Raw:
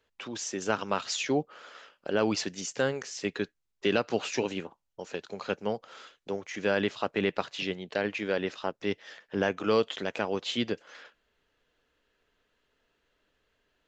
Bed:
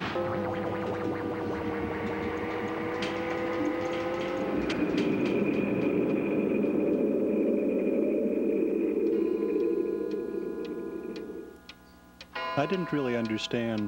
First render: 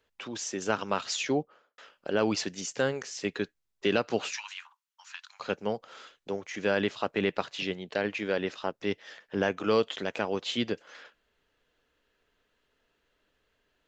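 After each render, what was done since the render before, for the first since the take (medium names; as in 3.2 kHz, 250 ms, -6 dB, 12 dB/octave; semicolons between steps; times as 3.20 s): 1.27–1.78 s: studio fade out; 4.32–5.40 s: steep high-pass 990 Hz 48 dB/octave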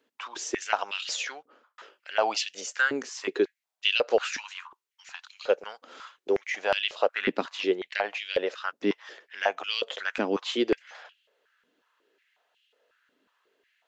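step-sequenced high-pass 5.5 Hz 260–2900 Hz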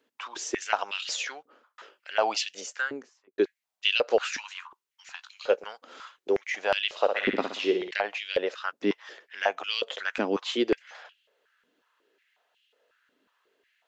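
2.49–3.38 s: studio fade out; 5.17–5.68 s: doubling 17 ms -13 dB; 6.89–7.91 s: flutter echo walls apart 10.4 m, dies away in 0.53 s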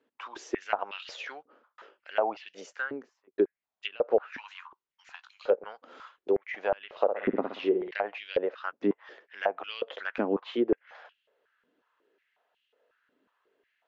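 low-pass that closes with the level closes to 940 Hz, closed at -21.5 dBFS; low-pass 1.4 kHz 6 dB/octave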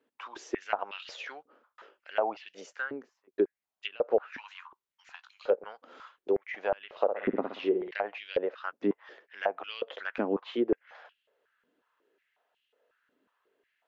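trim -1.5 dB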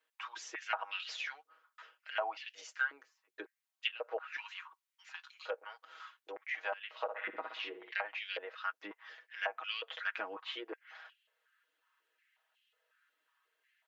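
high-pass 1.3 kHz 12 dB/octave; comb 6.3 ms, depth 80%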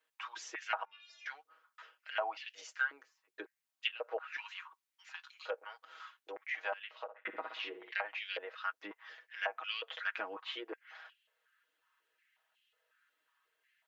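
0.85–1.26 s: inharmonic resonator 210 Hz, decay 0.43 s, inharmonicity 0.008; 6.79–7.25 s: fade out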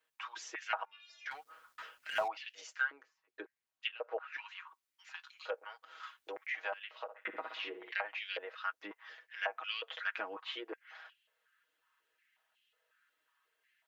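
1.31–2.28 s: companding laws mixed up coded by mu; 2.90–4.67 s: treble shelf 4.2 kHz -9 dB; 6.03–7.96 s: three bands compressed up and down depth 40%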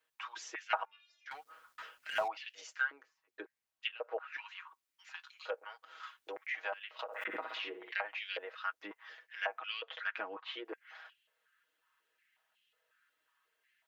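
0.62–1.31 s: three bands expanded up and down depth 100%; 6.99–7.68 s: swell ahead of each attack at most 61 dB/s; 9.58–10.65 s: distance through air 86 m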